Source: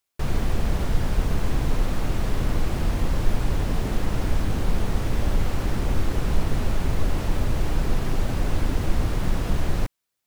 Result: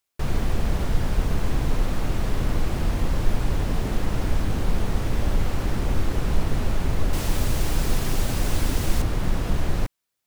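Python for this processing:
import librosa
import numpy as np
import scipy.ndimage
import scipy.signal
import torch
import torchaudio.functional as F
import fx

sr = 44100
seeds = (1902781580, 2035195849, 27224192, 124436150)

y = fx.high_shelf(x, sr, hz=3700.0, db=11.5, at=(7.13, 9.02))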